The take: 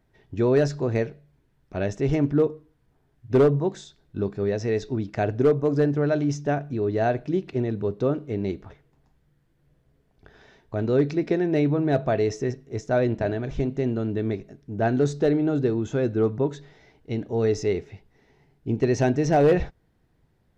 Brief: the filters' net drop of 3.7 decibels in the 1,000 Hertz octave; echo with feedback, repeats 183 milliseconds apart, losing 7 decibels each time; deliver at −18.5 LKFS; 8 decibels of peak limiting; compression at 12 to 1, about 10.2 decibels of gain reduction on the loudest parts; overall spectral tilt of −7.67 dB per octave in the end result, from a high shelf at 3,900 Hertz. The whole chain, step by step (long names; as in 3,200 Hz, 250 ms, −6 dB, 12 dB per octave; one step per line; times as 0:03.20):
parametric band 1,000 Hz −6 dB
high-shelf EQ 3,900 Hz −5.5 dB
downward compressor 12 to 1, threshold −25 dBFS
brickwall limiter −24 dBFS
repeating echo 183 ms, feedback 45%, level −7 dB
level +14.5 dB